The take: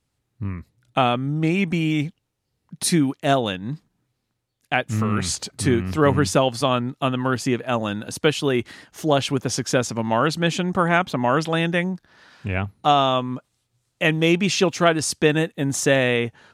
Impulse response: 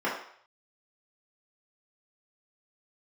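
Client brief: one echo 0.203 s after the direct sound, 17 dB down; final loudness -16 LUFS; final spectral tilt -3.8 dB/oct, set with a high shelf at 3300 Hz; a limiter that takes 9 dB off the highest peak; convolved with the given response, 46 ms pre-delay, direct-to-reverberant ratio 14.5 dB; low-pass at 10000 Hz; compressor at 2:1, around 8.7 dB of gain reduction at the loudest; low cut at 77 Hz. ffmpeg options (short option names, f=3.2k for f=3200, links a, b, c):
-filter_complex "[0:a]highpass=77,lowpass=10k,highshelf=f=3.3k:g=9,acompressor=threshold=-28dB:ratio=2,alimiter=limit=-17.5dB:level=0:latency=1,aecho=1:1:203:0.141,asplit=2[a][b];[1:a]atrim=start_sample=2205,adelay=46[c];[b][c]afir=irnorm=-1:irlink=0,volume=-26.5dB[d];[a][d]amix=inputs=2:normalize=0,volume=13dB"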